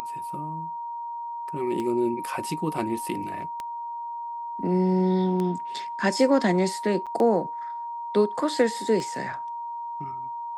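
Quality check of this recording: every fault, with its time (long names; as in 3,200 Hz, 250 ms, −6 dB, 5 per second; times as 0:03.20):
scratch tick 33 1/3 rpm −18 dBFS
whistle 940 Hz −31 dBFS
0:07.06–0:07.07: drop-out 6.7 ms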